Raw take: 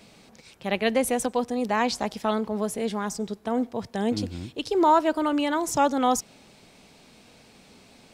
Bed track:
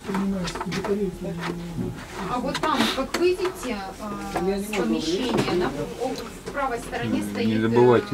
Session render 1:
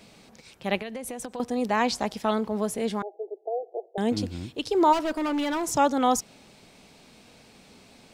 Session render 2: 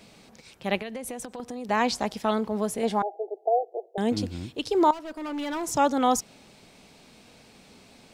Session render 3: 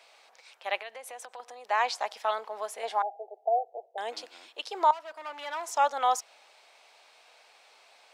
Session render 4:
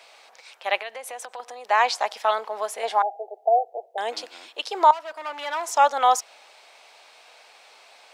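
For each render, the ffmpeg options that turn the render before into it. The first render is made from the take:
-filter_complex "[0:a]asettb=1/sr,asplit=3[s0][s1][s2];[s0]atrim=end=0.774[s3];[s1]atrim=start=0.77:end=1.4,asetpts=PTS-STARTPTS,afade=t=in:d=0.004:c=qsin,afade=t=out:st=0.626:d=0.004:c=qsin,acompressor=threshold=0.0282:ratio=12:attack=3.2:release=140:knee=1:detection=peak[s4];[s2]atrim=start=1.396[s5];[s3][s4]acrossfade=d=0.004:c1=hsin:c2=qsin[s6];[s6][s5]acrossfade=d=0.004:c1=qsin:c2=hsin,asettb=1/sr,asplit=3[s7][s8][s9];[s7]atrim=end=3.024[s10];[s8]atrim=start=3.02:end=3.98,asetpts=PTS-STARTPTS,afade=t=in:d=0.004:c=qsin,afade=t=out:st=0.956:d=0.004:c=qsin,asuperpass=centerf=520:order=20:qfactor=1.1[s11];[s9]atrim=start=3.976[s12];[s10][s11]acrossfade=d=0.004:c1=hsin:c2=qsin[s13];[s13][s12]acrossfade=d=0.004:c1=qsin:c2=hsin,asplit=3[s14][s15][s16];[s14]afade=t=out:st=4.92:d=0.02[s17];[s15]asoftclip=type=hard:threshold=0.0631,afade=t=in:st=4.92:d=0.02,afade=t=out:st=5.69:d=0.02[s18];[s16]afade=t=in:st=5.69:d=0.02[s19];[s17][s18][s19]amix=inputs=3:normalize=0"
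-filter_complex "[0:a]asettb=1/sr,asplit=3[s0][s1][s2];[s0]atrim=end=1.194[s3];[s1]atrim=start=1.19:end=1.69,asetpts=PTS-STARTPTS,afade=t=in:d=0.004:c=qsin,afade=t=out:st=0.496:d=0.004:c=qsin,acompressor=threshold=0.0251:ratio=6:attack=3.2:release=140:knee=1:detection=peak[s4];[s2]atrim=start=1.686[s5];[s3][s4]acrossfade=d=0.004:c1=hsin:c2=qsin[s6];[s6][s5]acrossfade=d=0.004:c1=qsin:c2=hsin,asettb=1/sr,asplit=3[s7][s8][s9];[s7]atrim=end=2.834[s10];[s8]atrim=start=2.83:end=3.65,asetpts=PTS-STARTPTS,afade=t=in:d=0.004:c=qsin,afade=t=out:st=0.816:d=0.004:c=qsin,equalizer=f=770:w=1.9:g=11.5[s11];[s9]atrim=start=3.646[s12];[s10][s11]acrossfade=d=0.004:c1=hsin:c2=qsin[s13];[s13][s12]acrossfade=d=0.004:c1=qsin:c2=hsin,asplit=2[s14][s15];[s14]atrim=end=4.91,asetpts=PTS-STARTPTS,afade=t=out:st=4.906:d=0.004:c=hsin:silence=0.188365[s16];[s15]atrim=start=4.91,asetpts=PTS-STARTPTS,afade=t=in:d=0.99:silence=0.188365[s17];[s16][s17]concat=n=2:v=0:a=1"
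-af "highpass=f=640:w=0.5412,highpass=f=640:w=1.3066,highshelf=f=5500:g=-10"
-af "volume=2.24"

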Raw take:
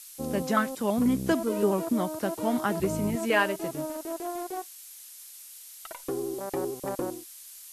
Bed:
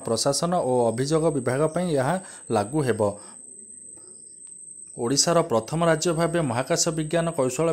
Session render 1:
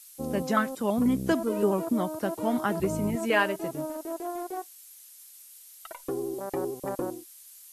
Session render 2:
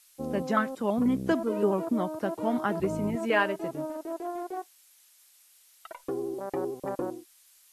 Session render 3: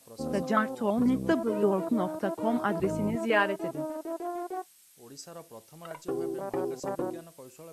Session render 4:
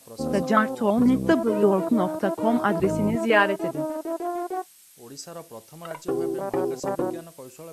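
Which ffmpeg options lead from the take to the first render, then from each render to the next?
-af "afftdn=nr=6:nf=-47"
-af "lowpass=f=3000:p=1,lowshelf=f=110:g=-6"
-filter_complex "[1:a]volume=0.0562[s0];[0:a][s0]amix=inputs=2:normalize=0"
-af "volume=2"

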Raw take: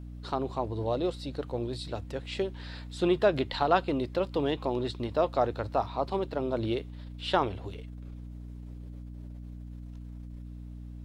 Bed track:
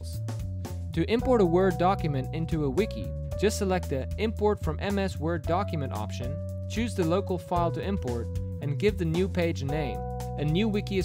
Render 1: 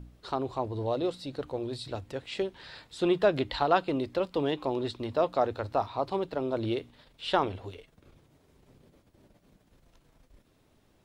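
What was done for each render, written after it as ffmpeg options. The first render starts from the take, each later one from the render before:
-af "bandreject=f=60:t=h:w=4,bandreject=f=120:t=h:w=4,bandreject=f=180:t=h:w=4,bandreject=f=240:t=h:w=4,bandreject=f=300:t=h:w=4"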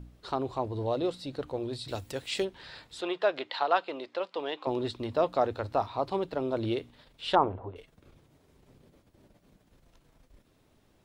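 -filter_complex "[0:a]asettb=1/sr,asplit=3[s0][s1][s2];[s0]atrim=end=1.884[s3];[s1]atrim=start=1.88:end=2.45,asetpts=PTS-STARTPTS,afade=t=in:d=0.004:c=qsin,afade=t=out:st=0.566:d=0.004:c=qsin,aemphasis=mode=production:type=75kf[s4];[s2]atrim=start=2.446[s5];[s3][s4]acrossfade=d=0.004:c1=hsin:c2=qsin[s6];[s6][s5]acrossfade=d=0.004:c1=qsin:c2=hsin,asettb=1/sr,asplit=3[s7][s8][s9];[s7]atrim=end=3.014[s10];[s8]atrim=start=3.01:end=4.67,asetpts=PTS-STARTPTS,afade=t=in:d=0.004:c=qsin,afade=t=out:st=1.656:d=0.004:c=qsin,highpass=560,lowpass=5000[s11];[s9]atrim=start=4.666[s12];[s10][s11]acrossfade=d=0.004:c1=hsin:c2=qsin[s13];[s13][s12]acrossfade=d=0.004:c1=qsin:c2=hsin,asettb=1/sr,asplit=3[s14][s15][s16];[s14]atrim=end=7.354[s17];[s15]atrim=start=7.35:end=7.76,asetpts=PTS-STARTPTS,afade=t=in:d=0.004:c=qsin,afade=t=out:st=0.406:d=0.004:c=qsin,lowpass=f=1000:t=q:w=1.7[s18];[s16]atrim=start=7.756[s19];[s17][s18]acrossfade=d=0.004:c1=hsin:c2=qsin[s20];[s20][s19]acrossfade=d=0.004:c1=qsin:c2=hsin"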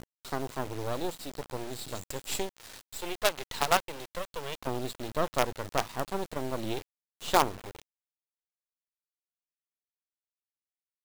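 -af "lowpass=f=7600:t=q:w=6.9,acrusher=bits=4:dc=4:mix=0:aa=0.000001"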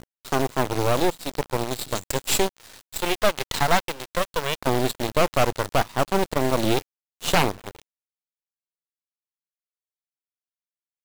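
-af "aeval=exprs='0.355*sin(PI/2*2.82*val(0)/0.355)':c=same,aeval=exprs='0.355*(cos(1*acos(clip(val(0)/0.355,-1,1)))-cos(1*PI/2))+0.0316*(cos(3*acos(clip(val(0)/0.355,-1,1)))-cos(3*PI/2))+0.01*(cos(6*acos(clip(val(0)/0.355,-1,1)))-cos(6*PI/2))+0.0398*(cos(7*acos(clip(val(0)/0.355,-1,1)))-cos(7*PI/2))+0.00282*(cos(8*acos(clip(val(0)/0.355,-1,1)))-cos(8*PI/2))':c=same"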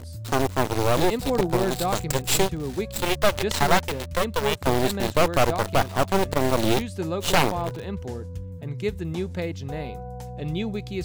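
-filter_complex "[1:a]volume=0.75[s0];[0:a][s0]amix=inputs=2:normalize=0"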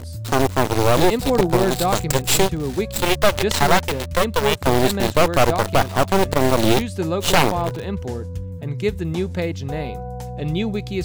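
-af "volume=1.88,alimiter=limit=0.708:level=0:latency=1"

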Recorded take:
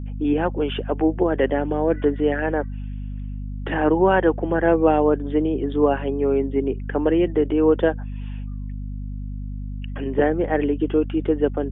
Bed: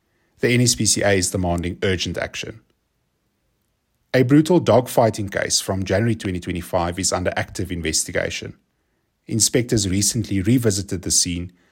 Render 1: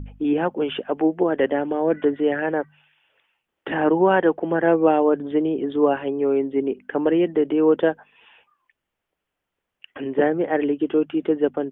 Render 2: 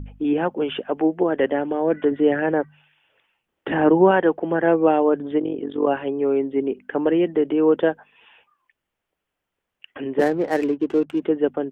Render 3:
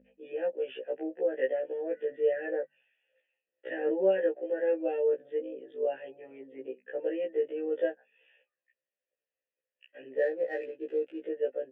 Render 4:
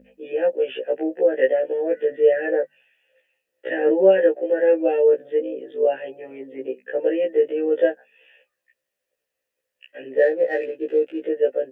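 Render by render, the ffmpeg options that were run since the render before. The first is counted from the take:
-af "bandreject=f=50:t=h:w=4,bandreject=f=100:t=h:w=4,bandreject=f=150:t=h:w=4,bandreject=f=200:t=h:w=4,bandreject=f=250:t=h:w=4"
-filter_complex "[0:a]asettb=1/sr,asplit=3[s0][s1][s2];[s0]atrim=end=2.114[s3];[s1]atrim=start=2.11:end=4.11,asetpts=PTS-STARTPTS,afade=t=in:d=0.004:c=qsin,afade=t=out:st=1.996:d=0.004:c=qsin,lowshelf=f=490:g=5[s4];[s2]atrim=start=4.106[s5];[s3][s4]acrossfade=d=0.004:c1=hsin:c2=qsin[s6];[s6][s5]acrossfade=d=0.004:c1=qsin:c2=hsin,asplit=3[s7][s8][s9];[s7]afade=t=out:st=5.38:d=0.02[s10];[s8]tremolo=f=46:d=0.788,afade=t=in:st=5.38:d=0.02,afade=t=out:st=5.86:d=0.02[s11];[s9]afade=t=in:st=5.86:d=0.02[s12];[s10][s11][s12]amix=inputs=3:normalize=0,asettb=1/sr,asplit=3[s13][s14][s15];[s13]atrim=end=10.194[s16];[s14]atrim=start=10.19:end=11.22,asetpts=PTS-STARTPTS,afade=t=in:d=0.004:c=qsin,afade=t=out:st=1.026:d=0.004:c=qsin,adynamicsmooth=sensitivity=7.5:basefreq=740[s17];[s15]atrim=start=11.216[s18];[s16][s17]acrossfade=d=0.004:c1=hsin:c2=qsin[s19];[s19][s18]acrossfade=d=0.004:c1=qsin:c2=hsin"
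-filter_complex "[0:a]asplit=3[s0][s1][s2];[s0]bandpass=f=530:t=q:w=8,volume=1[s3];[s1]bandpass=f=1840:t=q:w=8,volume=0.501[s4];[s2]bandpass=f=2480:t=q:w=8,volume=0.355[s5];[s3][s4][s5]amix=inputs=3:normalize=0,afftfilt=real='re*1.73*eq(mod(b,3),0)':imag='im*1.73*eq(mod(b,3),0)':win_size=2048:overlap=0.75"
-af "volume=3.55"

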